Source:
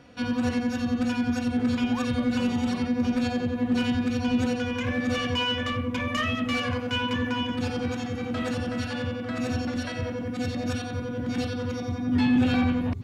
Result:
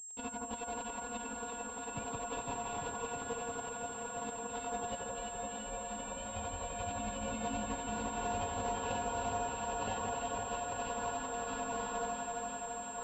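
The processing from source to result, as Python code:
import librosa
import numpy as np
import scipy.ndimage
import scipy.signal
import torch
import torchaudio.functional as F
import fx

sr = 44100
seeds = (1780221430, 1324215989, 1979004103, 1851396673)

p1 = x * np.sin(2.0 * np.pi * 1200.0 * np.arange(len(x)) / sr)
p2 = fx.air_absorb(p1, sr, metres=310.0)
p3 = fx.notch_comb(p2, sr, f0_hz=320.0)
p4 = p3 + fx.echo_diffused(p3, sr, ms=559, feedback_pct=57, wet_db=-7.0, dry=0)
p5 = np.sign(p4) * np.maximum(np.abs(p4) - 10.0 ** (-50.5 / 20.0), 0.0)
p6 = fx.over_compress(p5, sr, threshold_db=-38.0, ratio=-0.5)
p7 = fx.band_shelf(p6, sr, hz=1600.0, db=-15.5, octaves=1.2)
p8 = fx.echo_alternate(p7, sr, ms=169, hz=1600.0, feedback_pct=88, wet_db=-2.0)
y = fx.pwm(p8, sr, carrier_hz=7500.0)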